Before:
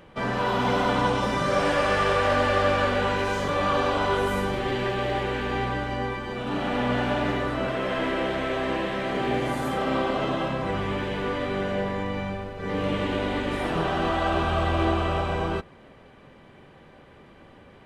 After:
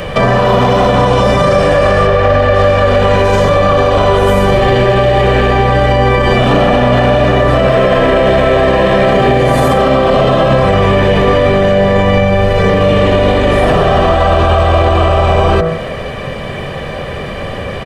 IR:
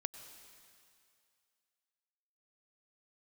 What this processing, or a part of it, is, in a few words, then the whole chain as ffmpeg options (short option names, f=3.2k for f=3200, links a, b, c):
mastering chain: -filter_complex "[0:a]bandreject=f=54.47:t=h:w=4,bandreject=f=108.94:t=h:w=4,bandreject=f=163.41:t=h:w=4,bandreject=f=217.88:t=h:w=4,bandreject=f=272.35:t=h:w=4,bandreject=f=326.82:t=h:w=4,bandreject=f=381.29:t=h:w=4,bandreject=f=435.76:t=h:w=4,bandreject=f=490.23:t=h:w=4,bandreject=f=544.7:t=h:w=4,bandreject=f=599.17:t=h:w=4,bandreject=f=653.64:t=h:w=4,bandreject=f=708.11:t=h:w=4,bandreject=f=762.58:t=h:w=4,bandreject=f=817.05:t=h:w=4,bandreject=f=871.52:t=h:w=4,bandreject=f=925.99:t=h:w=4,bandreject=f=980.46:t=h:w=4,bandreject=f=1.03493k:t=h:w=4,bandreject=f=1.0894k:t=h:w=4,bandreject=f=1.14387k:t=h:w=4,bandreject=f=1.19834k:t=h:w=4,bandreject=f=1.25281k:t=h:w=4,bandreject=f=1.30728k:t=h:w=4,bandreject=f=1.36175k:t=h:w=4,bandreject=f=1.41622k:t=h:w=4,bandreject=f=1.47069k:t=h:w=4,bandreject=f=1.52516k:t=h:w=4,bandreject=f=1.57963k:t=h:w=4,bandreject=f=1.6341k:t=h:w=4,bandreject=f=1.68857k:t=h:w=4,bandreject=f=1.74304k:t=h:w=4,bandreject=f=1.79751k:t=h:w=4,bandreject=f=1.85198k:t=h:w=4,bandreject=f=1.90645k:t=h:w=4,bandreject=f=1.96092k:t=h:w=4,bandreject=f=2.01539k:t=h:w=4,bandreject=f=2.06986k:t=h:w=4,asplit=3[a][b][c];[a]afade=t=out:st=2.06:d=0.02[d];[b]aemphasis=mode=reproduction:type=50fm,afade=t=in:st=2.06:d=0.02,afade=t=out:st=2.54:d=0.02[e];[c]afade=t=in:st=2.54:d=0.02[f];[d][e][f]amix=inputs=3:normalize=0,equalizer=f=1.2k:t=o:w=0.22:g=-4,aecho=1:1:1.7:0.54,acrossover=split=320|1300[g][h][i];[g]acompressor=threshold=-30dB:ratio=4[j];[h]acompressor=threshold=-28dB:ratio=4[k];[i]acompressor=threshold=-42dB:ratio=4[l];[j][k][l]amix=inputs=3:normalize=0,acompressor=threshold=-30dB:ratio=6,asoftclip=type=tanh:threshold=-22.5dB,alimiter=level_in=30dB:limit=-1dB:release=50:level=0:latency=1,volume=-1dB"